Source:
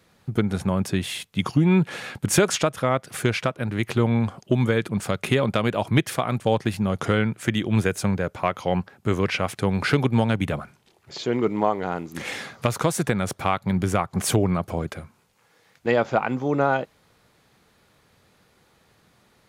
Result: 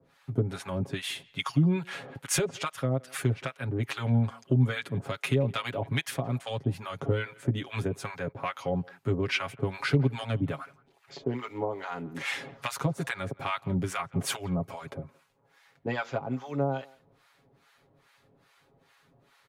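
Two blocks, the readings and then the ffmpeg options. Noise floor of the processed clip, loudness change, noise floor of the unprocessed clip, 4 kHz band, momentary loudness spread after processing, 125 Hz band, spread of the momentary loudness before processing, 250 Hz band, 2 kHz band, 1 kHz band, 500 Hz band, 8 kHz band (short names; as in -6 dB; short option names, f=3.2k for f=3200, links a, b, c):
-66 dBFS, -7.0 dB, -62 dBFS, -5.5 dB, 9 LU, -4.5 dB, 8 LU, -8.5 dB, -6.5 dB, -9.5 dB, -9.0 dB, -7.0 dB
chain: -filter_complex "[0:a]bass=f=250:g=-3,treble=f=4k:g=-6,aecho=1:1:7.3:0.81,acrossover=split=170|3000[a][b][c];[b]acompressor=threshold=-29dB:ratio=2[d];[a][d][c]amix=inputs=3:normalize=0,acrossover=split=790[e][f];[e]aeval=exprs='val(0)*(1-1/2+1/2*cos(2*PI*2.4*n/s))':c=same[g];[f]aeval=exprs='val(0)*(1-1/2-1/2*cos(2*PI*2.4*n/s))':c=same[h];[g][h]amix=inputs=2:normalize=0,asplit=2[i][j];[j]adelay=170,highpass=300,lowpass=3.4k,asoftclip=type=hard:threshold=-21.5dB,volume=-23dB[k];[i][k]amix=inputs=2:normalize=0"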